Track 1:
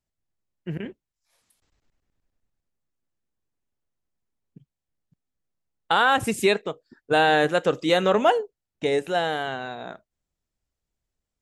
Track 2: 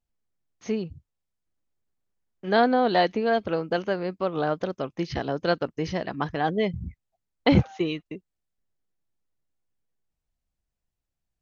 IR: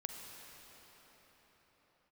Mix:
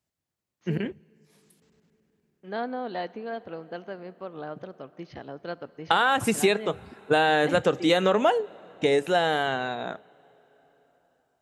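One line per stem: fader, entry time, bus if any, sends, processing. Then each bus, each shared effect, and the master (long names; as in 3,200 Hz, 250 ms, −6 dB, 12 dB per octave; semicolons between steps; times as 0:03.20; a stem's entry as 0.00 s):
+3.0 dB, 0.00 s, send −23.5 dB, no processing
−12.5 dB, 0.00 s, send −12 dB, bass and treble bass −1 dB, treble −7 dB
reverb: on, pre-delay 39 ms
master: high-pass filter 89 Hz; downward compressor 4 to 1, threshold −18 dBFS, peak gain reduction 7.5 dB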